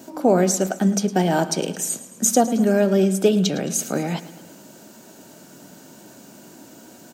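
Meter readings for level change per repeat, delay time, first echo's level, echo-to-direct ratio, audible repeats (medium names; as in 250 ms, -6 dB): -5.0 dB, 109 ms, -16.0 dB, -14.5 dB, 4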